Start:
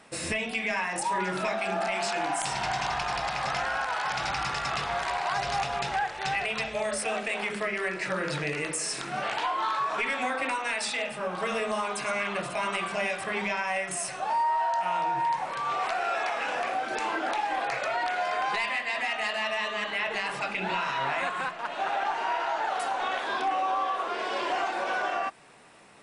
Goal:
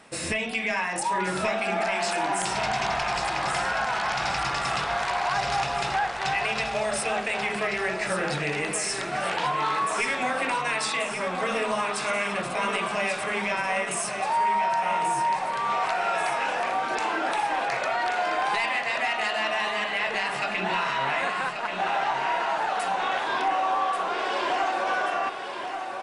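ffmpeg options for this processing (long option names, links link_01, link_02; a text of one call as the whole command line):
ffmpeg -i in.wav -filter_complex "[0:a]acontrast=71,asplit=2[link_01][link_02];[link_02]aecho=0:1:1134|2268|3402|4536|5670|6804|7938:0.398|0.219|0.12|0.0662|0.0364|0.02|0.011[link_03];[link_01][link_03]amix=inputs=2:normalize=0,volume=-4.5dB" out.wav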